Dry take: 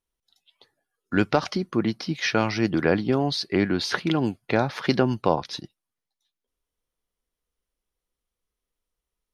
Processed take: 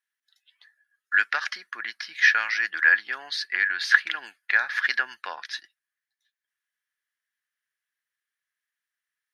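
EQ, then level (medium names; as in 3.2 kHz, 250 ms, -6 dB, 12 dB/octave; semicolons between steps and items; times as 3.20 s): resonant high-pass 1.7 kHz, resonance Q 9.1; -3.0 dB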